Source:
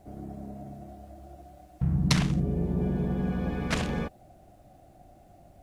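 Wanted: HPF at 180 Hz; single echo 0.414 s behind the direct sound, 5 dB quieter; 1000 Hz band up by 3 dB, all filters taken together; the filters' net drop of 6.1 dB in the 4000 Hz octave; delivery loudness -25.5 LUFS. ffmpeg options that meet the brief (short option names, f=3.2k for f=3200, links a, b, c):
-af "highpass=180,equalizer=f=1k:t=o:g=4.5,equalizer=f=4k:t=o:g=-8,aecho=1:1:414:0.562,volume=5.5dB"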